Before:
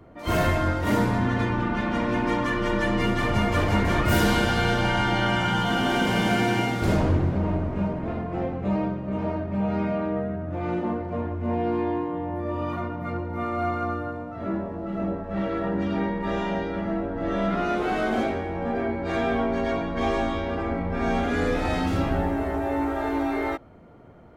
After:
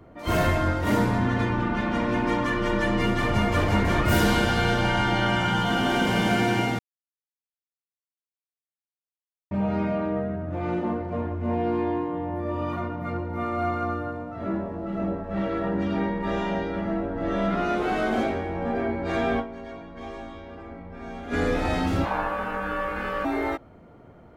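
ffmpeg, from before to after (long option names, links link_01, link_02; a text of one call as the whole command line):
ffmpeg -i in.wav -filter_complex "[0:a]asettb=1/sr,asplit=3[link_01][link_02][link_03];[link_01]atrim=end=22.054[link_04];[link_02]atrim=start=22.05:end=23.25,asetpts=PTS-STARTPTS,afade=type=in:duration=0.004:curve=qsin,afade=type=out:start_time=1.196:duration=0.004:curve=qsin,aeval=exprs='val(0)*sin(2*PI*860*n/s)':channel_layout=same[link_05];[link_03]atrim=start=23.246[link_06];[link_04][link_05]acrossfade=duration=0.004:curve1=hsin:curve2=qsin[link_07];[link_07][link_06]acrossfade=duration=0.004:curve1=qsin:curve2=hsin,asplit=5[link_08][link_09][link_10][link_11][link_12];[link_08]atrim=end=6.79,asetpts=PTS-STARTPTS,afade=type=out:start_time=6.786:duration=0.004:curve=hsin[link_13];[link_09]atrim=start=6.79:end=9.51,asetpts=PTS-STARTPTS,volume=0[link_14];[link_10]atrim=start=9.51:end=19.66,asetpts=PTS-STARTPTS,afade=type=in:duration=0.004:curve=hsin,afade=type=out:start_time=9.88:duration=0.27:curve=exp:silence=0.223872[link_15];[link_11]atrim=start=19.66:end=21.07,asetpts=PTS-STARTPTS,volume=-13dB[link_16];[link_12]atrim=start=21.07,asetpts=PTS-STARTPTS,afade=type=in:duration=0.27:curve=exp:silence=0.223872[link_17];[link_13][link_14][link_15][link_16][link_17]concat=n=5:v=0:a=1" out.wav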